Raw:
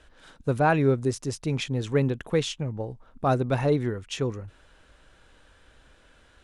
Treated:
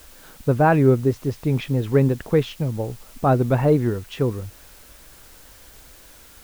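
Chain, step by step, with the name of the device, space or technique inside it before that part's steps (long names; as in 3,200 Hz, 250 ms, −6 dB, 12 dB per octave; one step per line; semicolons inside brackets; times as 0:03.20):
cassette deck with a dirty head (head-to-tape spacing loss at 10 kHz 30 dB; tape wow and flutter; white noise bed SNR 27 dB)
level +7 dB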